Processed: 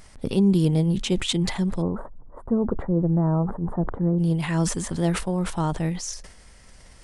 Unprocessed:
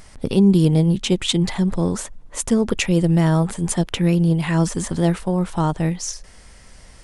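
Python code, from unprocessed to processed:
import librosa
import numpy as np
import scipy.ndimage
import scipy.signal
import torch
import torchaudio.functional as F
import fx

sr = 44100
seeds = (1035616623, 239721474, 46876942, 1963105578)

y = fx.cheby2_lowpass(x, sr, hz=2400.0, order=4, stop_db=40, at=(1.81, 4.18), fade=0.02)
y = fx.sustainer(y, sr, db_per_s=84.0)
y = y * 10.0 ** (-5.0 / 20.0)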